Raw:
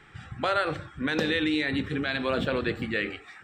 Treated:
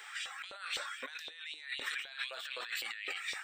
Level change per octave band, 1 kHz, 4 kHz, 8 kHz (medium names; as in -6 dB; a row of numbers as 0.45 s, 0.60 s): -14.5 dB, -5.5 dB, no reading